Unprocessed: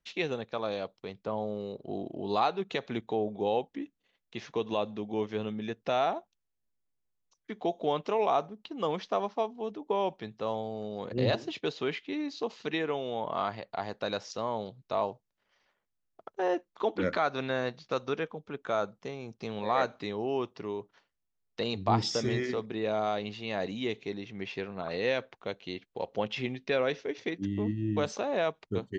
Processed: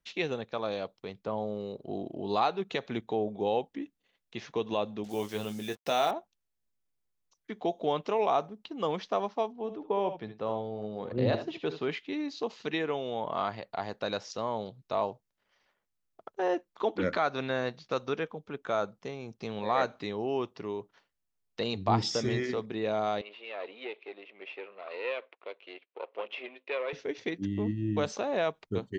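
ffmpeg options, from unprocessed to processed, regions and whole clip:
ffmpeg -i in.wav -filter_complex "[0:a]asettb=1/sr,asplit=3[link_01][link_02][link_03];[link_01]atrim=end=5.044[link_04];[link_02]atrim=start=5.04:end=6.11,asetpts=PTS-STARTPTS,afade=type=in:duration=0.004:curve=qsin,afade=type=out:start_time=1.066:duration=0.004:curve=qsin,asplit=2[link_05][link_06];[link_06]adelay=20,volume=-8.5dB[link_07];[link_05][link_07]amix=inputs=2:normalize=0,atrim=end_sample=47187,acrusher=bits=8:mix=0:aa=0.5,bass=frequency=250:gain=-3,treble=frequency=4000:gain=11[link_08];[link_03]atrim=start=6.106[link_09];[link_04][link_08]acrossfade=duration=0.004:curve1=hsin:curve2=qsin[link_10];[link_10][link_09]acrossfade=duration=0.004:curve1=qsin:curve2=hsin,asettb=1/sr,asplit=3[link_11][link_12][link_13];[link_11]atrim=end=9.524[link_14];[link_12]atrim=start=9.52:end=11.9,asetpts=PTS-STARTPTS,afade=type=in:duration=0.004:curve=qsin,afade=type=out:start_time=2.376:duration=0.004:curve=qsin,lowpass=frequency=2100:poles=1,aecho=1:1:63|75:0.178|0.266,atrim=end_sample=104958[link_15];[link_13]atrim=start=11.896[link_16];[link_14][link_15]acrossfade=duration=0.004:curve1=hsin:curve2=qsin[link_17];[link_17][link_16]acrossfade=duration=0.004:curve1=qsin:curve2=hsin,asettb=1/sr,asplit=3[link_18][link_19][link_20];[link_18]atrim=end=23.214[link_21];[link_19]atrim=start=23.21:end=26.93,asetpts=PTS-STARTPTS,afade=type=in:duration=0.004:curve=qsin,afade=type=out:start_time=3.716:duration=0.004:curve=qsin,aeval=exprs='if(lt(val(0),0),0.251*val(0),val(0))':channel_layout=same,highpass=frequency=390:width=0.5412,highpass=frequency=390:width=1.3066,equalizer=frequency=810:width_type=q:width=4:gain=-5,equalizer=frequency=1600:width_type=q:width=4:gain=-5,equalizer=frequency=2500:width_type=q:width=4:gain=5,lowpass=frequency=3300:width=0.5412,lowpass=frequency=3300:width=1.3066[link_22];[link_20]atrim=start=26.926[link_23];[link_21][link_22]acrossfade=duration=0.004:curve1=hsin:curve2=qsin[link_24];[link_24][link_23]acrossfade=duration=0.004:curve1=qsin:curve2=hsin" out.wav

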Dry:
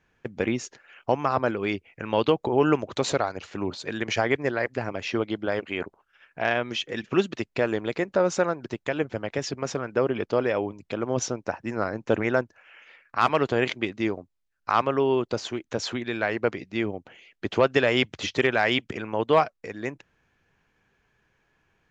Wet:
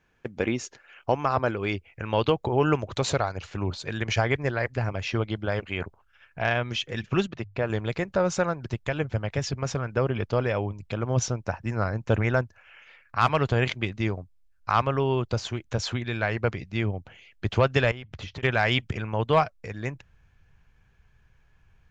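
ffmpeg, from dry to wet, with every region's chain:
ffmpeg -i in.wav -filter_complex "[0:a]asettb=1/sr,asplit=3[link_01][link_02][link_03];[link_01]atrim=end=7.274[link_04];[link_02]atrim=start=7.27:end=7.7,asetpts=PTS-STARTPTS,afade=type=in:duration=0.004:curve=qsin,afade=type=out:start_time=0.426:duration=0.004:curve=qsin,lowpass=frequency=1600:poles=1,lowshelf=frequency=180:gain=-6.5,bandreject=frequency=50:width_type=h:width=6,bandreject=frequency=100:width_type=h:width=6,bandreject=frequency=150:width_type=h:width=6[link_05];[link_03]atrim=start=7.696[link_06];[link_04][link_05]acrossfade=duration=0.004:curve1=hsin:curve2=qsin[link_07];[link_07][link_06]acrossfade=duration=0.004:curve1=qsin:curve2=hsin,asettb=1/sr,asplit=3[link_08][link_09][link_10];[link_08]atrim=end=17.914[link_11];[link_09]atrim=start=17.91:end=18.43,asetpts=PTS-STARTPTS,afade=type=in:duration=0.004:curve=qsin,afade=type=out:start_time=0.516:duration=0.004:curve=qsin,lowpass=frequency=2400:poles=1,acompressor=threshold=-36dB:ratio=8:attack=3.2:release=140:knee=1:detection=peak[link_12];[link_10]atrim=start=18.426[link_13];[link_11][link_12]acrossfade=duration=0.004:curve1=hsin:curve2=qsin[link_14];[link_14][link_13]acrossfade=duration=0.004:curve1=qsin:curve2=hsin,bandreject=frequency=1900:width=30,asubboost=boost=8.5:cutoff=100" out.wav

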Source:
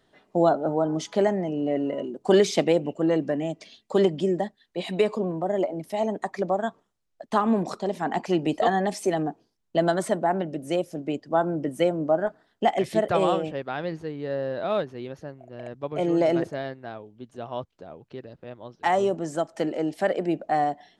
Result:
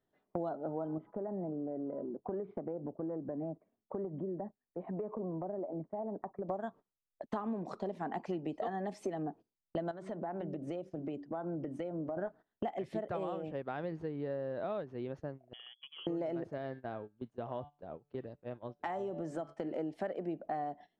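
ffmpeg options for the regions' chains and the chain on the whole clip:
ffmpeg -i in.wav -filter_complex "[0:a]asettb=1/sr,asplit=3[link_01][link_02][link_03];[link_01]atrim=end=0.984[link_04];[link_02]atrim=start=0.98:end=6.49,asetpts=PTS-STARTPTS,afade=type=in:duration=0.004:curve=qsin,afade=type=out:start_time=5.506:duration=0.004:curve=qsin,lowpass=frequency=1300:width=0.5412,lowpass=frequency=1300:width=1.3066,acompressor=threshold=-36dB:ratio=2.5:attack=3.2:release=140:knee=1:detection=peak[link_05];[link_03]atrim=start=6.486[link_06];[link_04][link_05]acrossfade=duration=0.004:curve1=hsin:curve2=qsin[link_07];[link_07][link_06]acrossfade=duration=0.004:curve1=qsin:curve2=hsin,asettb=1/sr,asplit=3[link_08][link_09][link_10];[link_08]atrim=end=9.914[link_11];[link_09]atrim=start=9.91:end=12.17,asetpts=PTS-STARTPTS,afade=type=in:duration=0.004:curve=qsin,afade=type=out:start_time=2.256:duration=0.004:curve=qsin,lowpass=6700,bandreject=frequency=94.82:width_type=h:width=4,bandreject=frequency=189.64:width_type=h:width=4,bandreject=frequency=284.46:width_type=h:width=4,bandreject=frequency=379.28:width_type=h:width=4,acompressor=threshold=-34dB:ratio=3:attack=3.2:release=140:knee=1:detection=peak[link_12];[link_10]atrim=start=12.166[link_13];[link_11][link_12]acrossfade=duration=0.004:curve1=hsin:curve2=qsin[link_14];[link_14][link_13]acrossfade=duration=0.004:curve1=qsin:curve2=hsin,asettb=1/sr,asplit=3[link_15][link_16][link_17];[link_15]atrim=end=15.534[link_18];[link_16]atrim=start=15.53:end=16.07,asetpts=PTS-STARTPTS,afade=type=in:duration=0.004:curve=qsin,afade=type=out:start_time=0.536:duration=0.004:curve=qsin,acompressor=threshold=-36dB:ratio=16:attack=3.2:release=140:knee=1:detection=peak,lowpass=frequency=3000:width_type=q:width=0.5098,lowpass=frequency=3000:width_type=q:width=0.6013,lowpass=frequency=3000:width_type=q:width=0.9,lowpass=frequency=3000:width_type=q:width=2.563,afreqshift=-3500[link_19];[link_17]atrim=start=16.066[link_20];[link_18][link_19]acrossfade=duration=0.004:curve1=hsin:curve2=qsin[link_21];[link_21][link_20]acrossfade=duration=0.004:curve1=qsin:curve2=hsin,asettb=1/sr,asplit=3[link_22][link_23][link_24];[link_22]atrim=end=16.574[link_25];[link_23]atrim=start=16.57:end=19.74,asetpts=PTS-STARTPTS,afade=type=in:duration=0.004:curve=qsin,afade=type=out:start_time=3.166:duration=0.004:curve=qsin,bandreject=frequency=145.5:width_type=h:width=4,bandreject=frequency=291:width_type=h:width=4,bandreject=frequency=436.5:width_type=h:width=4,bandreject=frequency=582:width_type=h:width=4,bandreject=frequency=727.5:width_type=h:width=4,bandreject=frequency=873:width_type=h:width=4,bandreject=frequency=1018.5:width_type=h:width=4,bandreject=frequency=1164:width_type=h:width=4,bandreject=frequency=1309.5:width_type=h:width=4,bandreject=frequency=1455:width_type=h:width=4,bandreject=frequency=1600.5:width_type=h:width=4,bandreject=frequency=1746:width_type=h:width=4,bandreject=frequency=1891.5:width_type=h:width=4,bandreject=frequency=2037:width_type=h:width=4,bandreject=frequency=2182.5:width_type=h:width=4,bandreject=frequency=2328:width_type=h:width=4,bandreject=frequency=2473.5:width_type=h:width=4,bandreject=frequency=2619:width_type=h:width=4,bandreject=frequency=2764.5:width_type=h:width=4,bandreject=frequency=2910:width_type=h:width=4,bandreject=frequency=3055.5:width_type=h:width=4,bandreject=frequency=3201:width_type=h:width=4,bandreject=frequency=3346.5:width_type=h:width=4,bandreject=frequency=3492:width_type=h:width=4,bandreject=frequency=3637.5:width_type=h:width=4,bandreject=frequency=3783:width_type=h:width=4,bandreject=frequency=3928.5:width_type=h:width=4,bandreject=frequency=4074:width_type=h:width=4,bandreject=frequency=4219.5:width_type=h:width=4,bandreject=frequency=4365:width_type=h:width=4,bandreject=frequency=4510.5:width_type=h:width=4,bandreject=frequency=4656:width_type=h:width=4,bandreject=frequency=4801.5:width_type=h:width=4,bandreject=frequency=4947:width_type=h:width=4,bandreject=frequency=5092.5:width_type=h:width=4,bandreject=frequency=5238:width_type=h:width=4,bandreject=frequency=5383.5:width_type=h:width=4,bandreject=frequency=5529:width_type=h:width=4,acompressor=threshold=-31dB:ratio=2:attack=3.2:release=140:knee=1:detection=peak[link_26];[link_24]atrim=start=19.736[link_27];[link_25][link_26]acrossfade=duration=0.004:curve1=hsin:curve2=qsin[link_28];[link_28][link_27]acrossfade=duration=0.004:curve1=qsin:curve2=hsin,agate=range=-16dB:threshold=-41dB:ratio=16:detection=peak,lowpass=frequency=1300:poles=1,acompressor=threshold=-34dB:ratio=6,volume=-1dB" out.wav

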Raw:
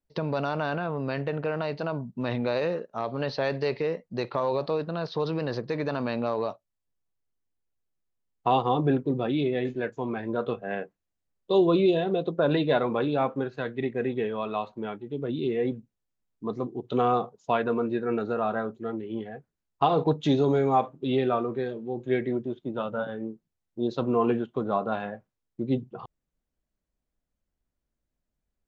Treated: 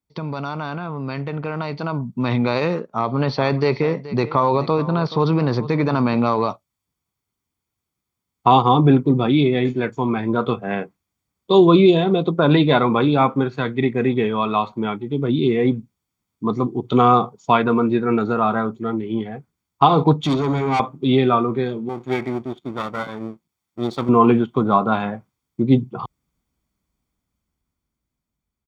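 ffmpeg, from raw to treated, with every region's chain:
ffmpeg -i in.wav -filter_complex "[0:a]asettb=1/sr,asplit=3[link_01][link_02][link_03];[link_01]atrim=end=2.814[link_04];[link_02]atrim=start=2.81:end=6.17,asetpts=PTS-STARTPTS,afade=type=in:duration=0.004:curve=qsin,afade=type=out:start_time=3.356:duration=0.004:curve=qsin,highshelf=frequency=2400:gain=-6.5,aecho=1:1:427:0.168,atrim=end_sample=148176[link_05];[link_03]atrim=start=6.166[link_06];[link_04][link_05]acrossfade=duration=0.004:curve1=hsin:curve2=qsin[link_07];[link_07][link_06]acrossfade=duration=0.004:curve1=qsin:curve2=hsin,asettb=1/sr,asplit=3[link_08][link_09][link_10];[link_08]atrim=end=20.214[link_11];[link_09]atrim=start=20.21:end=20.8,asetpts=PTS-STARTPTS,afade=type=in:duration=0.004:curve=qsin,afade=type=out:start_time=0.586:duration=0.004:curve=qsin,bandreject=frequency=60:width_type=h:width=6,bandreject=frequency=120:width_type=h:width=6,bandreject=frequency=180:width_type=h:width=6,bandreject=frequency=240:width_type=h:width=6,bandreject=frequency=300:width_type=h:width=6,bandreject=frequency=360:width_type=h:width=6,bandreject=frequency=420:width_type=h:width=6,aeval=exprs='(tanh(17.8*val(0)+0.35)-tanh(0.35))/17.8':channel_layout=same[link_12];[link_10]atrim=start=20.796[link_13];[link_11][link_12]acrossfade=duration=0.004:curve1=hsin:curve2=qsin[link_14];[link_14][link_13]acrossfade=duration=0.004:curve1=qsin:curve2=hsin,asettb=1/sr,asplit=3[link_15][link_16][link_17];[link_15]atrim=end=21.894[link_18];[link_16]atrim=start=21.89:end=24.09,asetpts=PTS-STARTPTS,afade=type=in:duration=0.004:curve=qsin,afade=type=out:start_time=2.196:duration=0.004:curve=qsin,aeval=exprs='if(lt(val(0),0),0.251*val(0),val(0))':channel_layout=same,lowshelf=frequency=190:gain=-11[link_19];[link_17]atrim=start=24.086[link_20];[link_18][link_19]acrossfade=duration=0.004:curve1=hsin:curve2=qsin[link_21];[link_21][link_20]acrossfade=duration=0.004:curve1=qsin:curve2=hsin,highpass=60,aecho=1:1:0.9:0.5,dynaudnorm=framelen=870:gausssize=5:maxgain=10.5dB,volume=1dB" out.wav

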